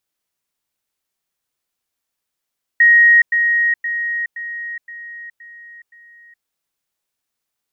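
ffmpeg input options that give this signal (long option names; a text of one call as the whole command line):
ffmpeg -f lavfi -i "aevalsrc='pow(10,(-6.5-6*floor(t/0.52))/20)*sin(2*PI*1880*t)*clip(min(mod(t,0.52),0.42-mod(t,0.52))/0.005,0,1)':duration=3.64:sample_rate=44100" out.wav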